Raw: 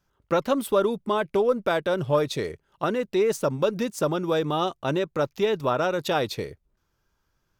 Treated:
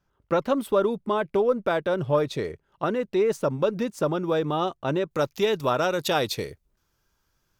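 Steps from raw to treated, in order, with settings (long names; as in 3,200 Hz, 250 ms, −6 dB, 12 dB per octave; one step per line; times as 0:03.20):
high-shelf EQ 3,400 Hz −7.5 dB, from 0:05.11 +6.5 dB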